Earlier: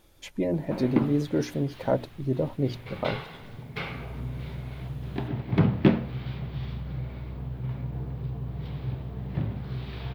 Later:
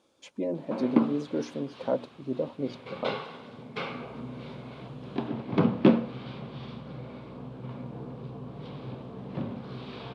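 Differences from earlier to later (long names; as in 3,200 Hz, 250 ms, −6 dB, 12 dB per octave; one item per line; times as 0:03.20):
speech −6.0 dB
master: add loudspeaker in its box 210–8,800 Hz, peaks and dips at 240 Hz +7 dB, 510 Hz +6 dB, 1,100 Hz +5 dB, 1,900 Hz −7 dB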